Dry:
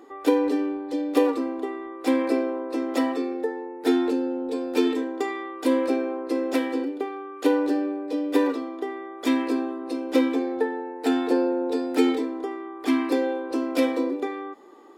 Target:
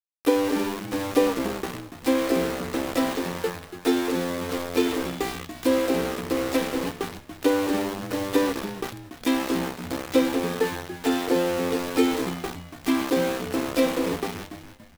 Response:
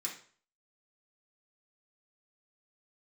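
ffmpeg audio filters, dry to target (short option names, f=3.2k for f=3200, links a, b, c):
-filter_complex "[0:a]aeval=exprs='val(0)*gte(abs(val(0)),0.0473)':c=same,asplit=5[a][b][c][d][e];[b]adelay=285,afreqshift=-88,volume=-11.5dB[f];[c]adelay=570,afreqshift=-176,volume=-20.4dB[g];[d]adelay=855,afreqshift=-264,volume=-29.2dB[h];[e]adelay=1140,afreqshift=-352,volume=-38.1dB[i];[a][f][g][h][i]amix=inputs=5:normalize=0,asplit=2[j][k];[1:a]atrim=start_sample=2205,asetrate=70560,aresample=44100[l];[k][l]afir=irnorm=-1:irlink=0,volume=-8dB[m];[j][m]amix=inputs=2:normalize=0"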